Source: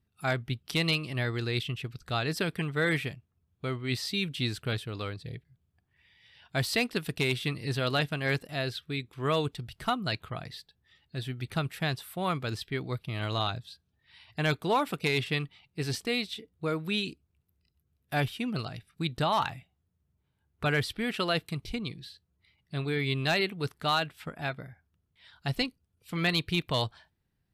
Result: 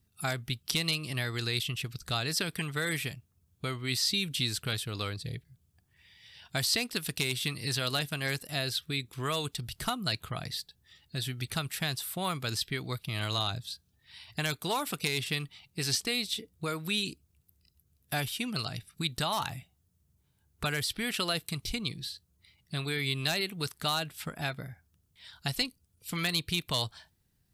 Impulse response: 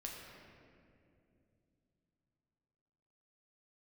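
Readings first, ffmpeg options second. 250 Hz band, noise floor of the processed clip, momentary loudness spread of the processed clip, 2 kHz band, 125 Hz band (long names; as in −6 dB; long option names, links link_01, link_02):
−4.0 dB, −72 dBFS, 10 LU, −2.0 dB, −3.0 dB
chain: -filter_complex "[0:a]acrossover=split=780|7100[link_01][link_02][link_03];[link_01]acompressor=threshold=-38dB:ratio=4[link_04];[link_02]acompressor=threshold=-34dB:ratio=4[link_05];[link_03]acompressor=threshold=-52dB:ratio=4[link_06];[link_04][link_05][link_06]amix=inputs=3:normalize=0,bass=frequency=250:gain=3,treble=frequency=4000:gain=12,volume=1.5dB"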